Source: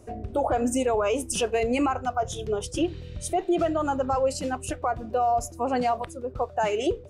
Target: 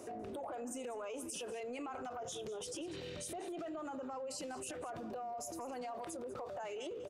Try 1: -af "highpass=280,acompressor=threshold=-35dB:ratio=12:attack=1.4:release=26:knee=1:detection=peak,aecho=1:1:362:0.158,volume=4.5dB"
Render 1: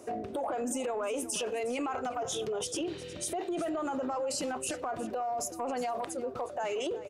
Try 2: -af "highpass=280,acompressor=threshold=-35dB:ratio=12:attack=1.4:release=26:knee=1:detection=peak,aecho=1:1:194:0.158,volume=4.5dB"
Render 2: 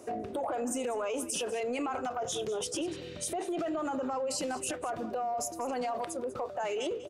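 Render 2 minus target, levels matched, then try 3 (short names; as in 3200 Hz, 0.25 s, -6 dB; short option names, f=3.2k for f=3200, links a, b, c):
compressor: peak gain reduction -10 dB
-af "highpass=280,acompressor=threshold=-46dB:ratio=12:attack=1.4:release=26:knee=1:detection=peak,aecho=1:1:194:0.158,volume=4.5dB"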